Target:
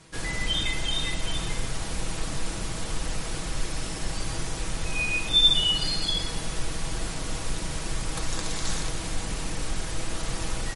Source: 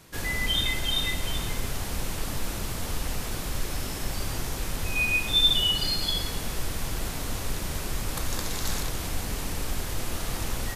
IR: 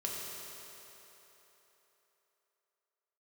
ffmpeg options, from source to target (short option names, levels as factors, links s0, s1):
-af "aecho=1:1:6.2:0.39" -ar 44100 -c:a libmp3lame -b:a 48k